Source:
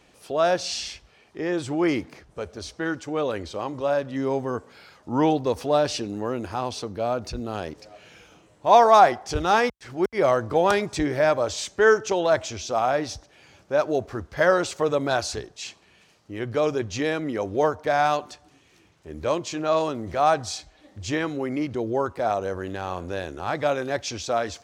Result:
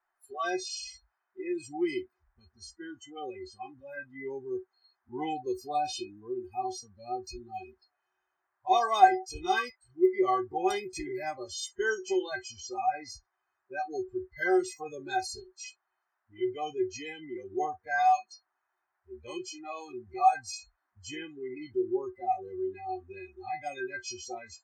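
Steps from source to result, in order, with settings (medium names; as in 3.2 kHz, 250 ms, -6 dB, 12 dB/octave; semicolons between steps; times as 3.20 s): inharmonic resonator 370 Hz, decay 0.23 s, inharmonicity 0.008; band noise 670–1800 Hz -60 dBFS; spectral noise reduction 30 dB; trim +7 dB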